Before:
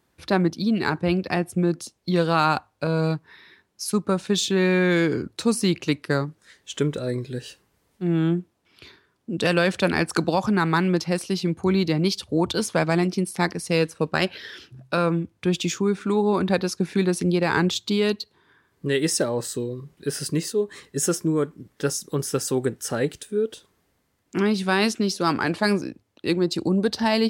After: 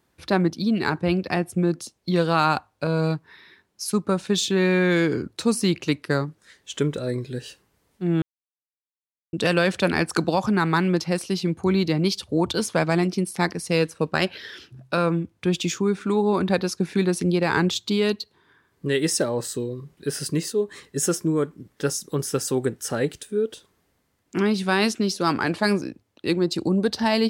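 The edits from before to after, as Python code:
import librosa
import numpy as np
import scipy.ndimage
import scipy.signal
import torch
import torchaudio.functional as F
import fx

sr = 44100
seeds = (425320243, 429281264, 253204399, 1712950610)

y = fx.edit(x, sr, fx.silence(start_s=8.22, length_s=1.11), tone=tone)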